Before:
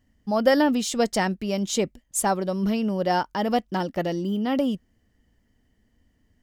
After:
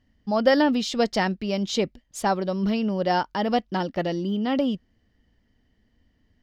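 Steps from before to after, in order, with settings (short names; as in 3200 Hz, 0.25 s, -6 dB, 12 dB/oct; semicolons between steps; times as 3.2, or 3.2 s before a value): resonant high shelf 6400 Hz -11.5 dB, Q 1.5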